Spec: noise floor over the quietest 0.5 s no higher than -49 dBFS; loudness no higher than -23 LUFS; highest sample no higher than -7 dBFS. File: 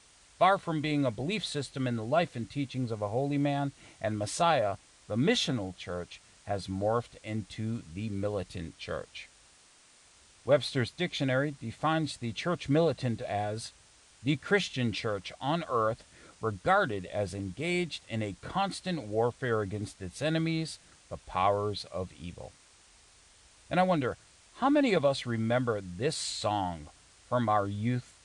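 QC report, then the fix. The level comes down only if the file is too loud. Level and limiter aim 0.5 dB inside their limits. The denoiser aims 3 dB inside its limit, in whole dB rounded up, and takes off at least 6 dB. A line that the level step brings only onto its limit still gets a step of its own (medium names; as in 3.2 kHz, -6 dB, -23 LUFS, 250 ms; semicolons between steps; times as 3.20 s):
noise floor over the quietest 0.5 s -60 dBFS: pass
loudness -31.0 LUFS: pass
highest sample -11.5 dBFS: pass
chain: none needed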